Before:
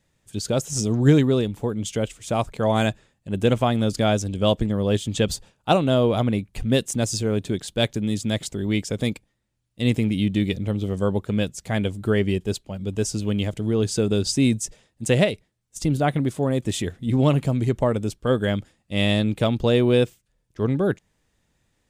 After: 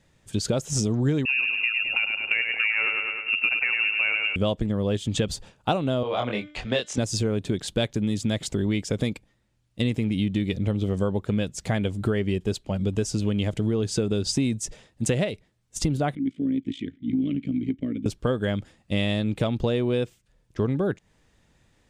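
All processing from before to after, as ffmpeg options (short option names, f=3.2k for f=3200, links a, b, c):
-filter_complex "[0:a]asettb=1/sr,asplit=3[a][b][c];[a]atrim=end=1.254[d];[b]atrim=start=1.25:end=4.36,asetpts=PTS-STARTPTS,afade=t=in:d=0.004:c=qsin,afade=t=out:st=3.106:d=0.004:c=qsin,lowpass=f=2.5k:t=q:w=0.5098,lowpass=f=2.5k:t=q:w=0.6013,lowpass=f=2.5k:t=q:w=0.9,lowpass=f=2.5k:t=q:w=2.563,afreqshift=-2900,aecho=1:1:103|206|309|412|515|618:0.562|0.27|0.13|0.0622|0.0299|0.0143,atrim=end_sample=137151[e];[c]atrim=start=4.356[f];[d][e]acrossfade=d=0.004:c1=hsin:c2=qsin[g];[g][f]acrossfade=d=0.004:c1=qsin:c2=hsin,asettb=1/sr,asplit=3[h][i][j];[h]atrim=end=6.034[k];[i]atrim=start=6.03:end=6.98,asetpts=PTS-STARTPTS,afade=t=in:d=0.004:c=qsin,afade=t=out:st=0.946:d=0.004:c=qsin,acrossover=split=490 6300:gain=0.158 1 0.0631[l][m][n];[l][m][n]amix=inputs=3:normalize=0,asplit=2[o][p];[p]adelay=24,volume=-2.5dB[q];[o][q]amix=inputs=2:normalize=0,atrim=end_sample=41895,bandreject=f=298.6:t=h:w=4,bandreject=f=597.2:t=h:w=4,bandreject=f=895.8:t=h:w=4,bandreject=f=1.1944k:t=h:w=4,bandreject=f=1.493k:t=h:w=4,bandreject=f=1.7916k:t=h:w=4,bandreject=f=2.0902k:t=h:w=4,bandreject=f=2.3888k:t=h:w=4,bandreject=f=2.6874k:t=h:w=4,bandreject=f=2.986k:t=h:w=4,bandreject=f=3.2846k:t=h:w=4,bandreject=f=3.5832k:t=h:w=4,bandreject=f=3.8818k:t=h:w=4,bandreject=f=4.1804k:t=h:w=4,bandreject=f=4.479k:t=h:w=4,bandreject=f=4.7776k:t=h:w=4,bandreject=f=5.0762k:t=h:w=4,bandreject=f=5.3748k:t=h:w=4,bandreject=f=5.6734k:t=h:w=4,bandreject=f=5.972k:t=h:w=4,bandreject=f=6.2706k:t=h:w=4,bandreject=f=6.5692k:t=h:w=4,bandreject=f=6.8678k:t=h:w=4,bandreject=f=7.1664k:t=h:w=4,bandreject=f=7.465k:t=h:w=4[r];[j]atrim=start=6.976[s];[k][r]acrossfade=d=0.004:c1=hsin:c2=qsin[t];[t][s]acrossfade=d=0.004:c1=qsin:c2=hsin,asettb=1/sr,asplit=3[u][v][w];[u]atrim=end=16.154[x];[v]atrim=start=16.15:end=18.06,asetpts=PTS-STARTPTS,afade=t=in:d=0.004:c=qsin,afade=t=out:st=1.906:d=0.004:c=qsin,lowshelf=f=170:g=10,tremolo=f=56:d=0.788,asplit=3[y][z][aa];[y]bandpass=f=270:t=q:w=8,volume=0dB[ab];[z]bandpass=f=2.29k:t=q:w=8,volume=-6dB[ac];[aa]bandpass=f=3.01k:t=q:w=8,volume=-9dB[ad];[ab][ac][ad]amix=inputs=3:normalize=0[ae];[w]atrim=start=18.056[af];[x][ae]acrossfade=d=0.004:c1=hsin:c2=qsin[ag];[ag][af]acrossfade=d=0.004:c1=qsin:c2=hsin,highshelf=f=9.9k:g=-11.5,acompressor=threshold=-28dB:ratio=6,volume=6.5dB"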